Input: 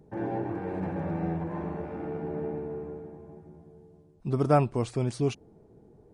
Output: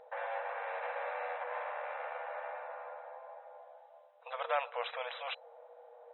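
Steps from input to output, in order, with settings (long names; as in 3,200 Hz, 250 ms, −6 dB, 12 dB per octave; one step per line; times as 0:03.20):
brick-wall band-pass 470–4,000 Hz
high-shelf EQ 2,700 Hz −8.5 dB
every bin compressed towards the loudest bin 2 to 1
level −6.5 dB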